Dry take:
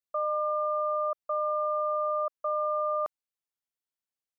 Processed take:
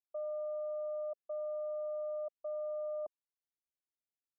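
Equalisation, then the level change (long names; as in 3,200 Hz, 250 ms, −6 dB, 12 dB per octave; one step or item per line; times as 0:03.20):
transistor ladder low-pass 640 Hz, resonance 50%
phaser with its sweep stopped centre 490 Hz, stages 6
+2.0 dB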